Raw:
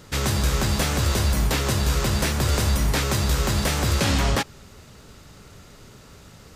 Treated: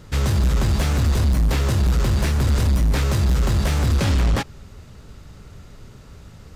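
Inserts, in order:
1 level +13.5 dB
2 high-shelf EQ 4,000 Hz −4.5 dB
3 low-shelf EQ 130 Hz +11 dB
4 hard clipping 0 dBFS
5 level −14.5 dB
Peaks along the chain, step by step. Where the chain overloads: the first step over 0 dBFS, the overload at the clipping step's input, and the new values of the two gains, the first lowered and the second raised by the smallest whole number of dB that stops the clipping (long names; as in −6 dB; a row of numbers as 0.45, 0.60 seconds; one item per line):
+3.0, +2.0, +8.5, 0.0, −14.5 dBFS
step 1, 8.5 dB
step 1 +4.5 dB, step 5 −5.5 dB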